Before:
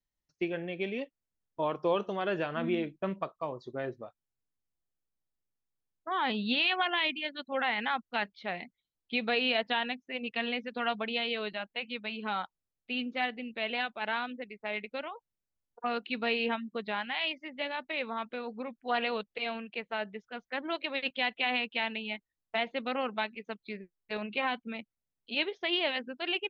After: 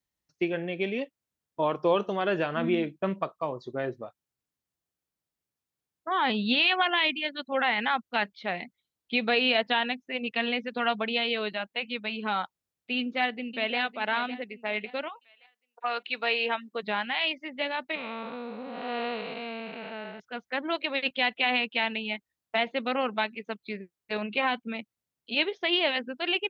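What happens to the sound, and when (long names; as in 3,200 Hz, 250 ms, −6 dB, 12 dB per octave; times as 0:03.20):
0:12.97–0:13.78: delay throw 560 ms, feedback 40%, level −12.5 dB
0:15.08–0:16.82: high-pass filter 1,100 Hz → 360 Hz
0:17.95–0:20.20: spectrum smeared in time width 357 ms
whole clip: high-pass filter 67 Hz; level +4.5 dB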